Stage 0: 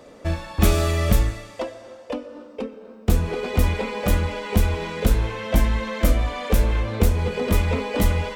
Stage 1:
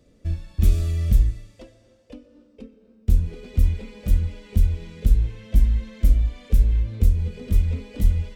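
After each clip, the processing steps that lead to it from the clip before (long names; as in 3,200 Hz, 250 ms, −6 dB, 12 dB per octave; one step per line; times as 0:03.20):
guitar amp tone stack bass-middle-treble 10-0-1
level +9 dB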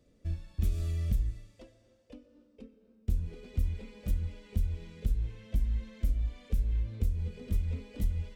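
downward compressor, threshold −15 dBFS, peak gain reduction 6.5 dB
level −8.5 dB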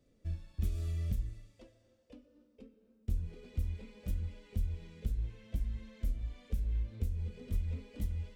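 flanger 0.67 Hz, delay 7 ms, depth 8.6 ms, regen −61%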